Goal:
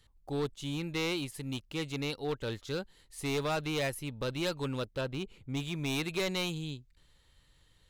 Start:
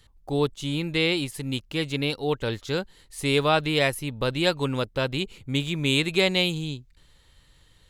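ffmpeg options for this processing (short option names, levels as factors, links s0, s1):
-filter_complex "[0:a]asettb=1/sr,asplit=3[s0][s1][s2];[s0]atrim=end=5.014[s3];[s1]atrim=start=5.01:end=5.57,asetpts=PTS-STARTPTS,afade=t=in:d=0.004:c=qsin,afade=t=out:st=0.556:d=0.004:c=qsin,highshelf=f=3000:g=-9[s4];[s2]atrim=start=5.566[s5];[s3][s4]acrossfade=d=0.004:c1=hsin:c2=qsin[s6];[s6][s5]acrossfade=d=0.004:c1=qsin:c2=hsin,volume=10,asoftclip=hard,volume=0.1,volume=0.422"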